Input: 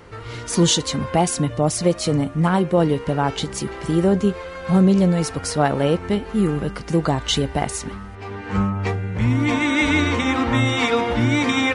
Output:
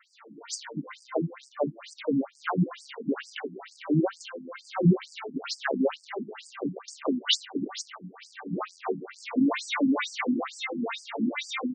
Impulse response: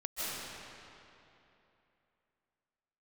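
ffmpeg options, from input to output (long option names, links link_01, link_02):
-filter_complex "[0:a]afreqshift=-16,dynaudnorm=framelen=340:gausssize=13:maxgain=13.5dB,asplit=3[link_01][link_02][link_03];[link_02]asetrate=22050,aresample=44100,atempo=2,volume=-9dB[link_04];[link_03]asetrate=88200,aresample=44100,atempo=0.5,volume=-17dB[link_05];[link_01][link_04][link_05]amix=inputs=3:normalize=0,asplit=2[link_06][link_07];[link_07]acrusher=bits=5:dc=4:mix=0:aa=0.000001,volume=-9dB[link_08];[link_06][link_08]amix=inputs=2:normalize=0,afftfilt=real='re*between(b*sr/1024,220*pow(6600/220,0.5+0.5*sin(2*PI*2.2*pts/sr))/1.41,220*pow(6600/220,0.5+0.5*sin(2*PI*2.2*pts/sr))*1.41)':imag='im*between(b*sr/1024,220*pow(6600/220,0.5+0.5*sin(2*PI*2.2*pts/sr))/1.41,220*pow(6600/220,0.5+0.5*sin(2*PI*2.2*pts/sr))*1.41)':win_size=1024:overlap=0.75,volume=-7dB"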